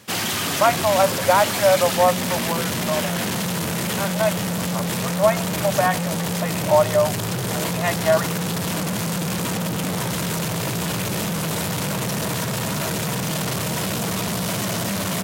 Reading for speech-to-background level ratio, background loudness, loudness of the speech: 2.0 dB, -23.5 LUFS, -21.5 LUFS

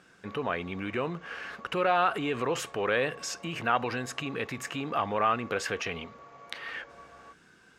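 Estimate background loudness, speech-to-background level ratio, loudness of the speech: -50.5 LUFS, 19.5 dB, -31.0 LUFS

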